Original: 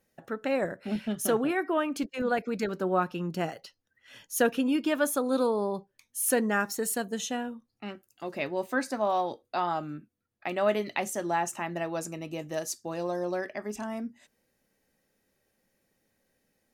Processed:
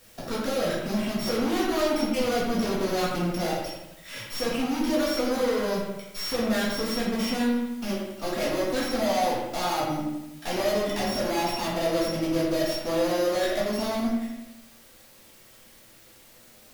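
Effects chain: sample sorter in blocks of 8 samples; in parallel at +1 dB: negative-ratio compressor -31 dBFS; on the sum: reverb removal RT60 1 s; tube stage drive 35 dB, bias 0.35; added noise white -62 dBFS; on a send: analogue delay 83 ms, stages 2048, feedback 53%, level -6.5 dB; on the sum: shoebox room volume 130 m³, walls mixed, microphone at 1.7 m; gain +2.5 dB

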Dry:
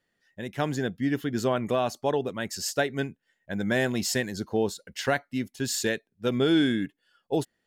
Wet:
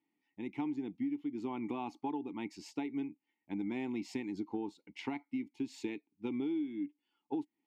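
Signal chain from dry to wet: vowel filter u; compressor 10:1, threshold -41 dBFS, peak gain reduction 19.5 dB; gain +7.5 dB

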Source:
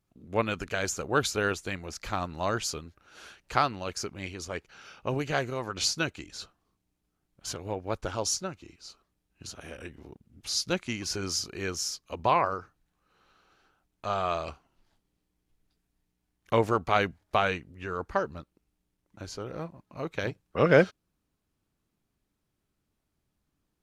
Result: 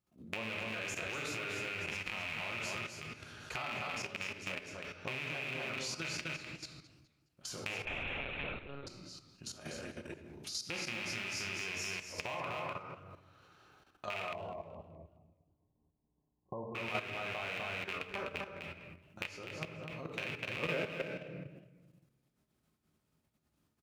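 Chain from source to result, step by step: rattling part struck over -37 dBFS, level -10 dBFS; resonator 620 Hz, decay 0.3 s, mix 60%; echo 0.25 s -4 dB; shoebox room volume 240 m³, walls mixed, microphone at 0.93 m; level quantiser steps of 12 dB; HPF 71 Hz; 7.85–8.87 monotone LPC vocoder at 8 kHz 140 Hz; compressor 2.5:1, threshold -53 dBFS, peak gain reduction 20 dB; 14.33–16.75 Chebyshev low-pass 1100 Hz, order 10; warbling echo 0.209 s, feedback 34%, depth 213 cents, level -18 dB; gain +9.5 dB

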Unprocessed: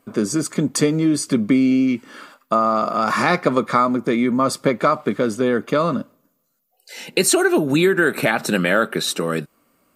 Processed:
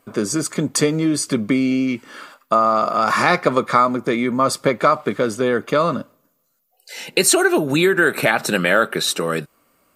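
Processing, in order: bell 230 Hz -5.5 dB 1.3 oct; gain +2.5 dB

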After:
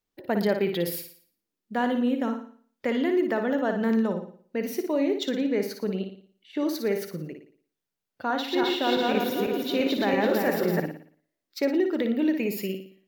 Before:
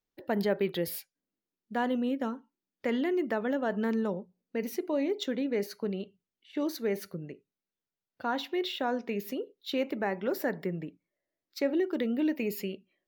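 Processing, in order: 8.3–10.8 regenerating reverse delay 0.167 s, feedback 63%, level -0.5 dB; flutter echo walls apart 9.9 m, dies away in 0.49 s; gain +3.5 dB

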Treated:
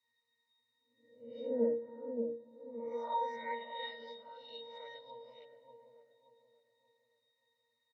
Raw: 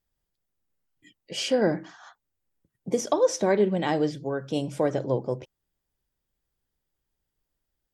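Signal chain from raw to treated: spectral swells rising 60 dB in 0.61 s; weighting filter A; low-pass opened by the level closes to 1000 Hz, open at -25 dBFS; comb 1.4 ms, depth 93%; band-pass sweep 330 Hz -> 3600 Hz, 1.63–3.86; added noise blue -70 dBFS; octave resonator A#, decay 0.36 s; dark delay 0.578 s, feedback 36%, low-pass 550 Hz, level -4 dB; on a send at -18 dB: reverb RT60 2.2 s, pre-delay 6 ms; on the sum: mismatched tape noise reduction encoder only; gain +15 dB

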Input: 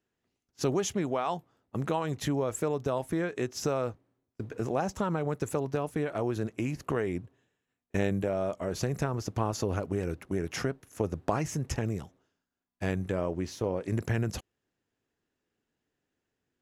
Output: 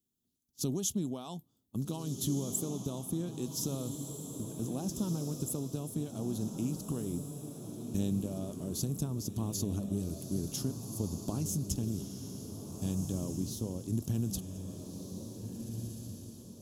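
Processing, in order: EQ curve 120 Hz 0 dB, 240 Hz +4 dB, 480 Hz -11 dB, 1100 Hz -13 dB, 2000 Hz -27 dB, 3400 Hz +2 dB, 4900 Hz +1 dB, 12000 Hz +14 dB; on a send: diffused feedback echo 1.639 s, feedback 42%, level -6.5 dB; on the sum: gain -3.5 dB

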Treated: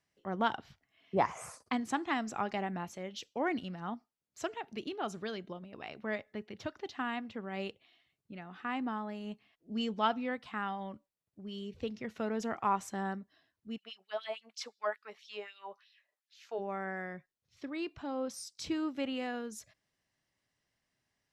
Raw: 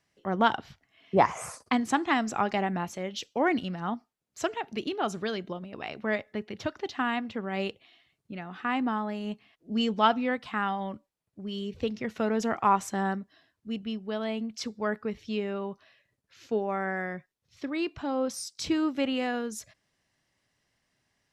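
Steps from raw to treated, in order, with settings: 13.76–16.58 LFO high-pass sine 8.2 Hz -> 1.8 Hz 600–3900 Hz; gain -7.5 dB

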